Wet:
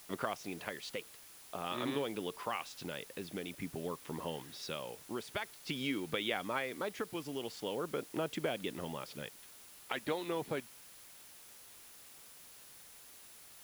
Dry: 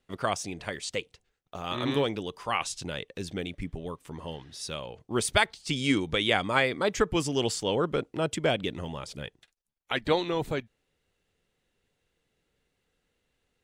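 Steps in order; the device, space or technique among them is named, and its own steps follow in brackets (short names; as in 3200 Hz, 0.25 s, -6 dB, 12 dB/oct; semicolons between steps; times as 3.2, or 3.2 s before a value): medium wave at night (BPF 180–3800 Hz; compressor 4:1, threshold -35 dBFS, peak gain reduction 14.5 dB; tremolo 0.48 Hz, depth 41%; whine 10000 Hz -63 dBFS; white noise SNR 15 dB); gain +1 dB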